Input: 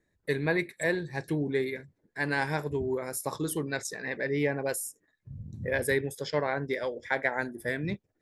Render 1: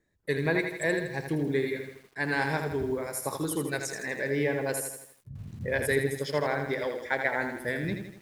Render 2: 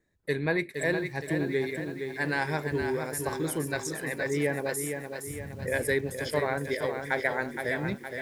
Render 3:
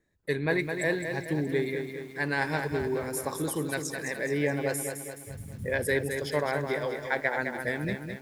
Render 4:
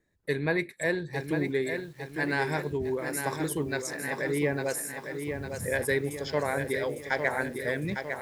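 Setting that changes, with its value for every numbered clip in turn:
feedback echo at a low word length, delay time: 81, 466, 211, 854 milliseconds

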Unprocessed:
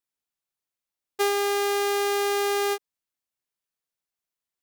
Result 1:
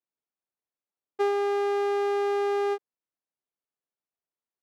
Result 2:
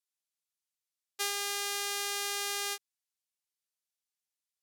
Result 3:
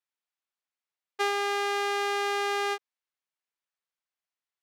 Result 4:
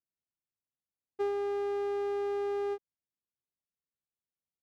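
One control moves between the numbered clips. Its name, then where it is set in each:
resonant band-pass, frequency: 420, 7,200, 1,600, 110 Hertz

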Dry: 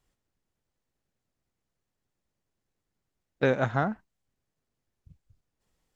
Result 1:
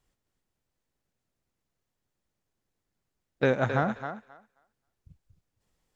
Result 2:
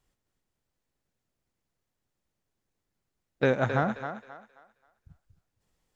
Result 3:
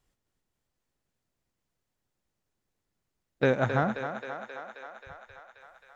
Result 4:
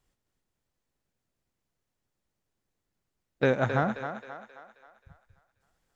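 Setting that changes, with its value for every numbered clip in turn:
feedback echo with a high-pass in the loop, feedback: 16, 32, 76, 49%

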